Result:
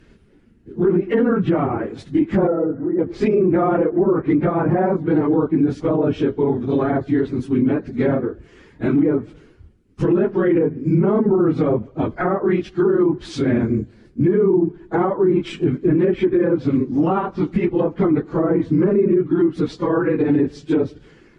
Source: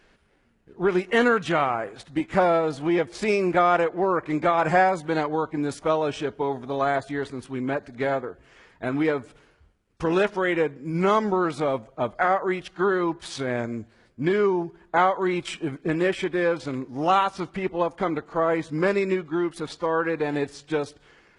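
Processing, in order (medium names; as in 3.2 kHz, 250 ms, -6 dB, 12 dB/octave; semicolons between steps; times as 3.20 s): phase randomisation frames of 50 ms; low-pass that closes with the level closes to 1.2 kHz, closed at -19 dBFS; resonant low shelf 470 Hz +10 dB, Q 1.5; peak limiter -11 dBFS, peak gain reduction 11 dB; 2.47–2.99 s: rippled Chebyshev low-pass 2 kHz, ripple 9 dB; trim +2 dB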